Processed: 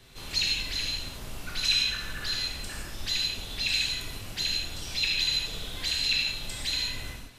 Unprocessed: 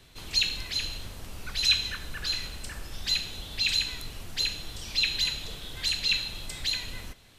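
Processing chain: in parallel at -2 dB: compressor, threshold -37 dBFS, peak gain reduction 18 dB; on the sum: non-linear reverb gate 0.19 s flat, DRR -2.5 dB; gain -5.5 dB

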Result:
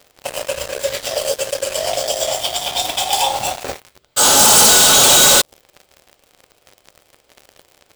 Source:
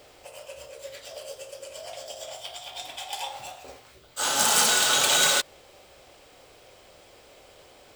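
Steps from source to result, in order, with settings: sample leveller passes 5; dynamic EQ 1900 Hz, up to -8 dB, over -29 dBFS, Q 0.85; gain +2.5 dB

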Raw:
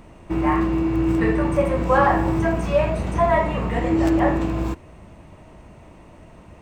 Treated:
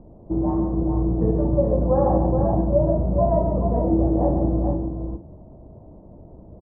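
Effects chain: inverse Chebyshev low-pass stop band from 4000 Hz, stop band 80 dB; on a send: tapped delay 0.142/0.427/0.478 s -6.5/-5.5/-18.5 dB

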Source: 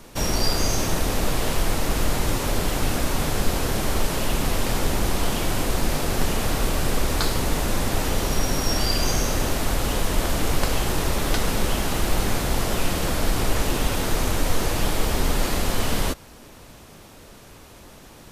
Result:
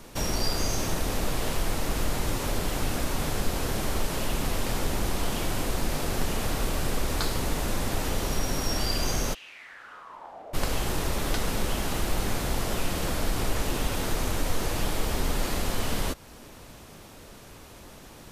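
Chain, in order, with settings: in parallel at -1 dB: compressor, threshold -30 dBFS, peak gain reduction 15.5 dB; 9.33–10.53 on the sum: band-pass 3100 Hz -> 610 Hz, Q 5.9; gain -7 dB

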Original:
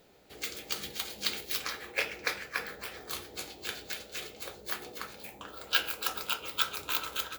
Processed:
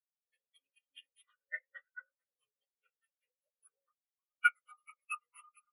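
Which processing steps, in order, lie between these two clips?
inharmonic rescaling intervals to 80%; varispeed +29%; spectral expander 4:1

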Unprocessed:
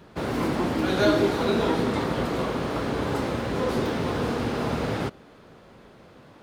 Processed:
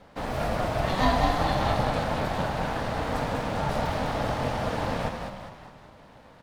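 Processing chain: frequency-shifting echo 0.202 s, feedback 48%, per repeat +33 Hz, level -5 dB; ring modulator 370 Hz

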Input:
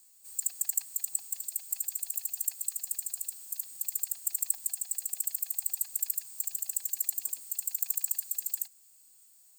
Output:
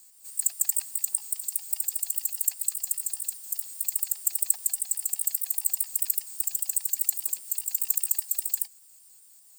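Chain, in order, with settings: trilling pitch shifter +1.5 st, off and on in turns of 0.101 s; gain +6 dB

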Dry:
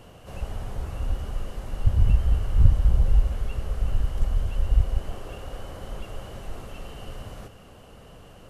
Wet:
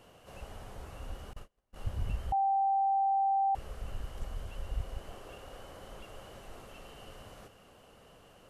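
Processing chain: 1.33–1.76 gate -25 dBFS, range -35 dB; low shelf 200 Hz -10 dB; 2.32–3.55 bleep 783 Hz -18.5 dBFS; gain -6.5 dB

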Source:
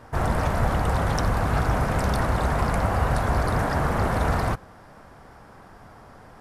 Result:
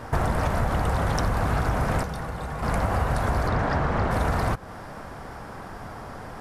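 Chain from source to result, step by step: compressor 6:1, threshold -30 dBFS, peak gain reduction 12.5 dB; 2.03–2.63 resonator 160 Hz, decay 0.16 s, harmonics odd, mix 70%; 3.48–4.11 LPF 4900 Hz 12 dB/oct; gain +9 dB

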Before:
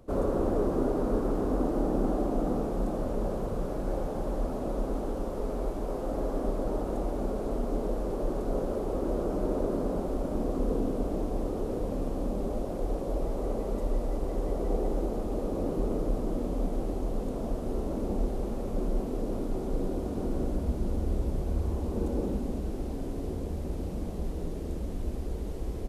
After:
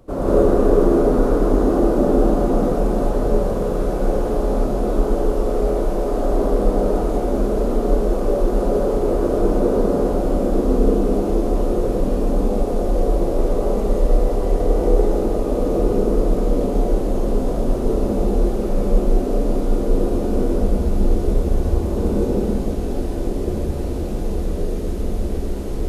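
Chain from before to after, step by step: non-linear reverb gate 0.22 s rising, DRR -6 dB; gain +4.5 dB

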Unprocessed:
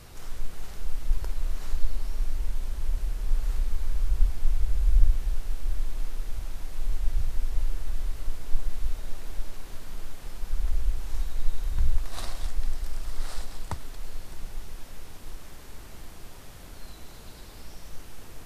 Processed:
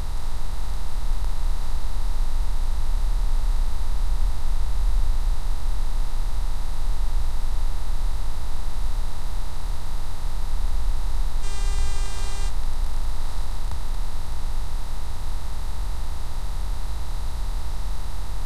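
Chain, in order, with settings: per-bin compression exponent 0.2; 11.42–12.48 buzz 400 Hz, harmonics 23, -34 dBFS -1 dB/oct; gain -6.5 dB

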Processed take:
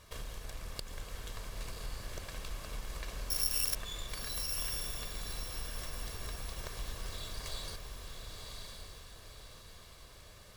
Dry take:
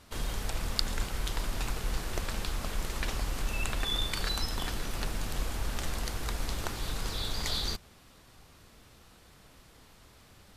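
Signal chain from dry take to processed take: minimum comb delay 1.8 ms; compressor 3:1, threshold -42 dBFS, peak gain reduction 14.5 dB; 3.3–3.75 careless resampling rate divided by 8×, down none, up zero stuff; diffused feedback echo 1.063 s, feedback 42%, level -4 dB

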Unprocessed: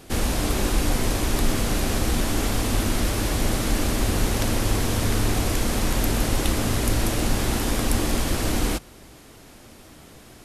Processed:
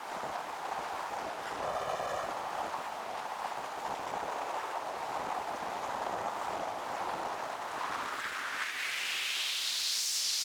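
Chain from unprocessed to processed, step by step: random spectral dropouts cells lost 35%; bell 6800 Hz +8.5 dB 0.42 oct; fuzz box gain 50 dB, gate -56 dBFS; compressor 2.5:1, threshold -39 dBFS, peak gain reduction 17 dB; feedback echo 62 ms, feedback 45%, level -4.5 dB; sine folder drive 20 dB, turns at -19 dBFS; 1.62–2.26 comb 1.7 ms, depth 70%; 4.26–4.83 HPF 330 Hz 24 dB/oct; reverb RT60 4.7 s, pre-delay 10 ms, DRR 6 dB; band-pass sweep 840 Hz -> 5300 Hz, 7.59–10.16; record warp 33 1/3 rpm, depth 160 cents; gain -1.5 dB

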